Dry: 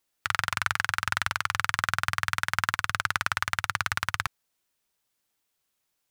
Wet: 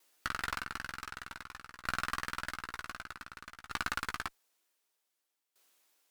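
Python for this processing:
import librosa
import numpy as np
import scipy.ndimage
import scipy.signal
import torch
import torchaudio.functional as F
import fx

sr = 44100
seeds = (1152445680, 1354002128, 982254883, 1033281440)

y = scipy.signal.sosfilt(scipy.signal.butter(4, 270.0, 'highpass', fs=sr, output='sos'), x)
y = fx.over_compress(y, sr, threshold_db=-30.0, ratio=-0.5)
y = fx.tube_stage(y, sr, drive_db=29.0, bias=0.45)
y = fx.doubler(y, sr, ms=15.0, db=-9.0)
y = fx.tremolo_decay(y, sr, direction='decaying', hz=0.54, depth_db=19)
y = y * 10.0 ** (7.5 / 20.0)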